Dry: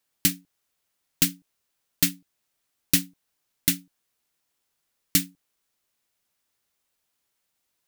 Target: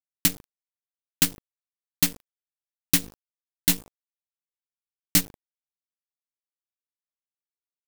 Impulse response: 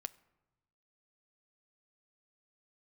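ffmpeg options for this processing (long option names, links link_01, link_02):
-filter_complex "[0:a]aeval=exprs='val(0)+0.00501*(sin(2*PI*50*n/s)+sin(2*PI*2*50*n/s)/2+sin(2*PI*3*50*n/s)/3+sin(2*PI*4*50*n/s)/4+sin(2*PI*5*50*n/s)/5)':channel_layout=same,acrusher=bits=4:dc=4:mix=0:aa=0.000001,asettb=1/sr,asplit=3[link_01][link_02][link_03];[link_01]atrim=end=3.024[link_04];[link_02]atrim=start=3.02:end=5.21,asetpts=PTS-STARTPTS,afade=type=in:duration=0.004:curve=qsin,afade=type=out:start_time=2.186:duration=0.004:curve=qsin,asplit=2[link_05][link_06];[link_06]adelay=17,volume=-4dB[link_07];[link_05][link_07]amix=inputs=2:normalize=0,atrim=end_sample=96579[link_08];[link_03]atrim=start=5.206[link_09];[link_04][link_08]acrossfade=duration=0.004:curve1=hsin:curve2=qsin[link_10];[link_10][link_09]acrossfade=duration=0.004:curve1=qsin:curve2=hsin"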